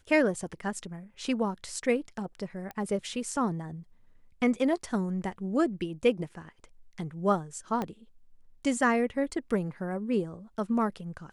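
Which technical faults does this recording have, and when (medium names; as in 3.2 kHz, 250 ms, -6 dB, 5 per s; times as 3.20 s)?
2.71 s: pop -24 dBFS
7.82 s: pop -19 dBFS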